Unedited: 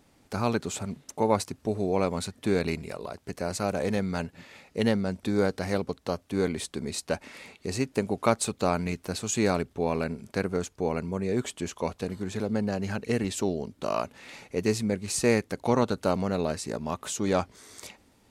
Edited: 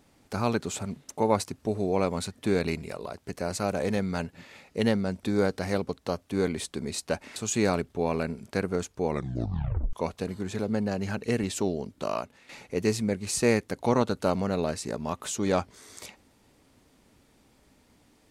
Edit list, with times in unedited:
7.36–9.17 s: delete
10.88 s: tape stop 0.86 s
13.81–14.30 s: fade out, to -12.5 dB

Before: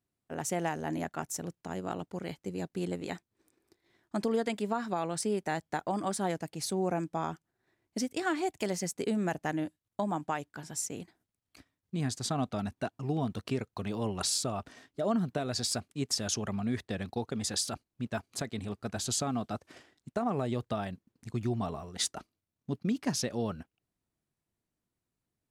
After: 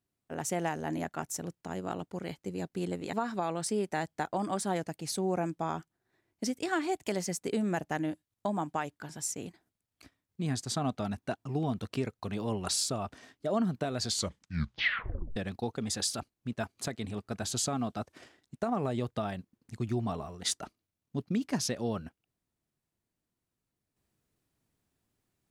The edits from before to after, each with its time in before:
3.13–4.67 s: delete
15.56 s: tape stop 1.34 s

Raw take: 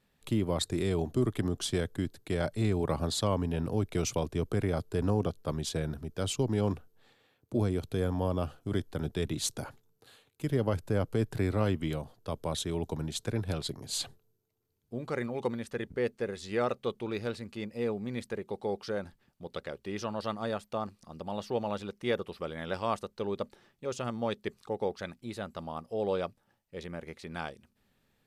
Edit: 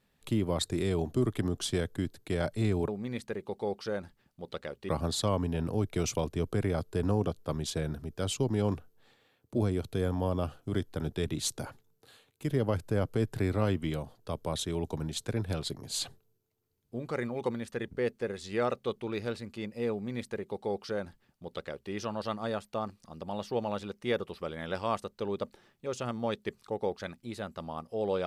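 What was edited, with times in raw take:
17.90–19.91 s: copy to 2.88 s

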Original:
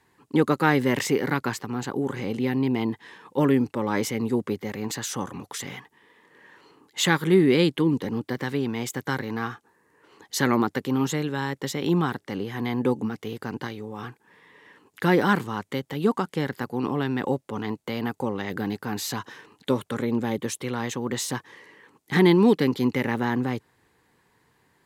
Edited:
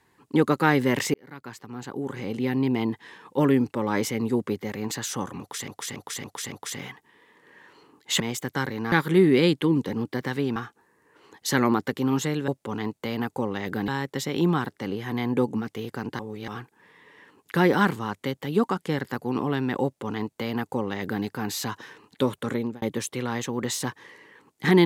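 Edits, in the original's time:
1.14–2.60 s: fade in
5.40–5.68 s: loop, 5 plays
8.72–9.44 s: move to 7.08 s
13.67–13.96 s: reverse
17.32–18.72 s: copy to 11.36 s
20.03–20.30 s: fade out

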